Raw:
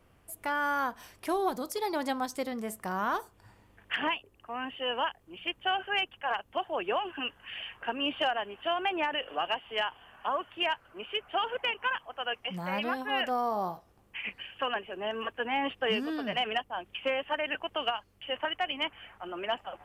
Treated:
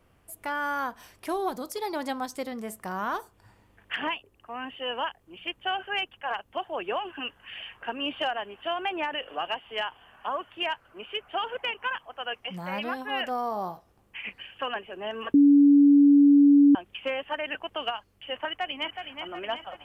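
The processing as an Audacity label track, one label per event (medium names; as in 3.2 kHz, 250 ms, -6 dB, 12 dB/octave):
15.340000	16.750000	bleep 285 Hz -13 dBFS
18.470000	19.020000	echo throw 370 ms, feedback 55%, level -6.5 dB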